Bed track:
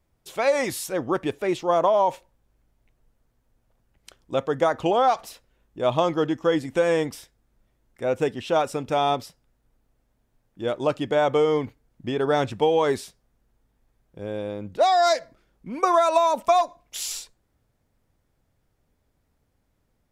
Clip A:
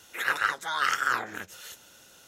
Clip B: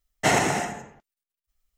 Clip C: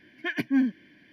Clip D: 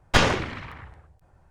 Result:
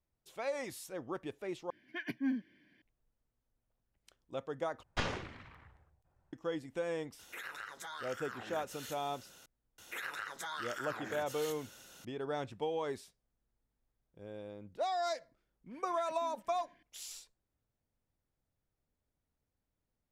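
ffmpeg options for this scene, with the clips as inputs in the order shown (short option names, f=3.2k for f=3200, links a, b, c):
-filter_complex "[3:a]asplit=2[a][b];[1:a]asplit=2[c][d];[0:a]volume=-16dB[e];[4:a]acrossover=split=7700[f][g];[g]acompressor=threshold=-49dB:ratio=4:attack=1:release=60[h];[f][h]amix=inputs=2:normalize=0[i];[c]acompressor=threshold=-38dB:ratio=6:attack=3.2:release=140:knee=1:detection=peak[j];[d]acompressor=threshold=-36dB:ratio=6:attack=3.2:release=140:knee=1:detection=peak[k];[b]acompressor=threshold=-43dB:ratio=6:attack=3.2:release=140:knee=1:detection=peak[l];[e]asplit=3[m][n][o];[m]atrim=end=1.704[p];[a]atrim=end=1.12,asetpts=PTS-STARTPTS,volume=-11dB[q];[n]atrim=start=2.816:end=4.834[r];[i]atrim=end=1.5,asetpts=PTS-STARTPTS,volume=-16.5dB[s];[o]atrim=start=6.326[t];[j]atrim=end=2.27,asetpts=PTS-STARTPTS,volume=-4dB,afade=t=in:d=0.004:c=hsin,afade=t=out:st=2.266:d=0.004:c=hsin,adelay=7190[u];[k]atrim=end=2.27,asetpts=PTS-STARTPTS,volume=-2dB,afade=t=in:d=0.004:c=hsin,afade=t=out:st=2.266:d=0.004:c=hsin,adelay=431298S[v];[l]atrim=end=1.12,asetpts=PTS-STARTPTS,volume=-12dB,afade=t=in:d=0.004:c=hsin,afade=t=out:st=1.116:d=0.004:c=hsin,adelay=15710[w];[p][q]acrossfade=d=0.004:c1=hsin:c2=hsin[x];[x][r]acrossfade=d=0.004:c1=hsin:c2=hsin[y];[y][s]acrossfade=d=0.004:c1=hsin:c2=hsin[z];[z][t]acrossfade=d=0.004:c1=hsin:c2=hsin[aa];[aa][u][v][w]amix=inputs=4:normalize=0"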